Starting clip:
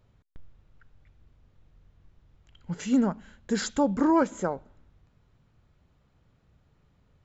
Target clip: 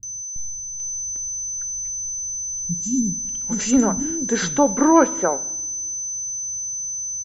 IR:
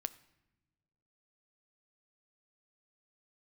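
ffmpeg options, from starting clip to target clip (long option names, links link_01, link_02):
-filter_complex "[0:a]aeval=exprs='val(0)+0.02*sin(2*PI*6100*n/s)':channel_layout=same,acrossover=split=220|5200[link_01][link_02][link_03];[link_03]adelay=30[link_04];[link_02]adelay=800[link_05];[link_01][link_05][link_04]amix=inputs=3:normalize=0,asplit=2[link_06][link_07];[1:a]atrim=start_sample=2205[link_08];[link_07][link_08]afir=irnorm=-1:irlink=0,volume=12dB[link_09];[link_06][link_09]amix=inputs=2:normalize=0,volume=-4dB"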